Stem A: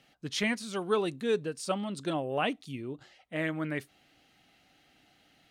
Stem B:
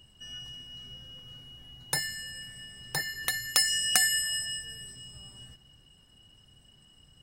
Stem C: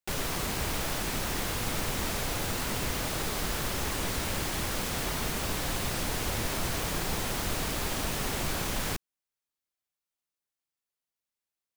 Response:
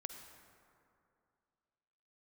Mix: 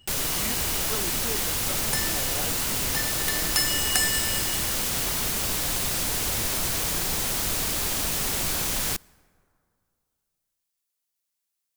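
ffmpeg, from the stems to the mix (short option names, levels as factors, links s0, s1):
-filter_complex "[0:a]volume=0.376[s0];[1:a]volume=0.944[s1];[2:a]highshelf=f=3600:g=11,volume=0.891,asplit=2[s2][s3];[s3]volume=0.158[s4];[3:a]atrim=start_sample=2205[s5];[s4][s5]afir=irnorm=-1:irlink=0[s6];[s0][s1][s2][s6]amix=inputs=4:normalize=0"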